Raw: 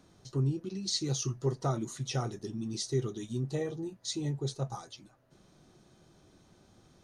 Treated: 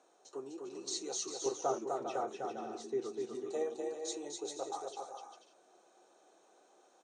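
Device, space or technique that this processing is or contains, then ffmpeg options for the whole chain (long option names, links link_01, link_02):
phone speaker on a table: -filter_complex "[0:a]highpass=frequency=390:width=0.5412,highpass=frequency=390:width=1.3066,equalizer=frequency=480:width_type=q:width=4:gain=3,equalizer=frequency=750:width_type=q:width=4:gain=7,equalizer=frequency=2000:width_type=q:width=4:gain=-6,equalizer=frequency=3300:width_type=q:width=4:gain=-5,equalizer=frequency=4800:width_type=q:width=4:gain=-10,equalizer=frequency=7500:width_type=q:width=4:gain=5,lowpass=frequency=8800:width=0.5412,lowpass=frequency=8800:width=1.3066,asettb=1/sr,asplit=3[link_01][link_02][link_03];[link_01]atrim=end=1.464[link_04];[link_02]atrim=start=1.46:end=3.35,asetpts=PTS-STARTPTS,afade=type=in:duration=0.004:curve=qsin,afade=type=out:start_time=1.886:duration=0.004:curve=qsin,bass=frequency=250:gain=12,treble=frequency=4000:gain=-14[link_05];[link_03]atrim=start=3.346[link_06];[link_04][link_05]acrossfade=duration=0.004:curve1=hsin:curve2=qsin[link_07];[link_07][link_06]acrossfade=duration=0.004:curve1=qsin:curve2=hsin,aecho=1:1:250|400|490|544|576.4:0.631|0.398|0.251|0.158|0.1,volume=-3dB"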